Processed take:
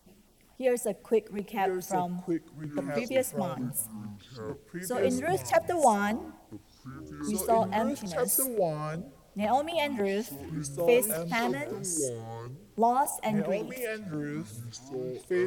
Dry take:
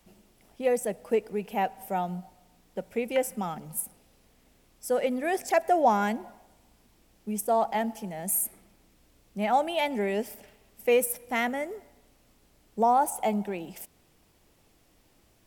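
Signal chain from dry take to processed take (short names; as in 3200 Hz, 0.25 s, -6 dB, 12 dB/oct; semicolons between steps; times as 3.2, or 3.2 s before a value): LFO notch saw down 3.6 Hz 320–2800 Hz; echoes that change speed 0.788 s, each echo -5 st, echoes 3, each echo -6 dB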